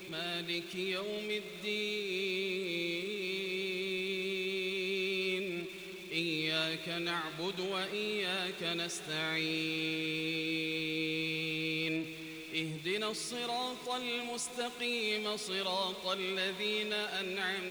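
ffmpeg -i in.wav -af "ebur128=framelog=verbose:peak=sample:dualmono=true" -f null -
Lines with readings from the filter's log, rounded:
Integrated loudness:
  I:         -31.9 LUFS
  Threshold: -41.9 LUFS
Loudness range:
  LRA:         1.6 LU
  Threshold: -51.8 LUFS
  LRA low:   -32.6 LUFS
  LRA high:  -31.0 LUFS
Sample peak:
  Peak:      -20.4 dBFS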